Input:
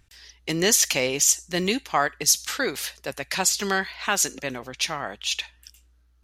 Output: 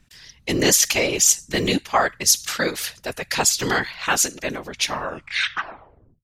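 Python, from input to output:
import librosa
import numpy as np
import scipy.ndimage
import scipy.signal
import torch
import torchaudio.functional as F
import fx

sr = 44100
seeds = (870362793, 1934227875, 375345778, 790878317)

y = fx.tape_stop_end(x, sr, length_s=1.37)
y = fx.whisperise(y, sr, seeds[0])
y = y * librosa.db_to_amplitude(3.0)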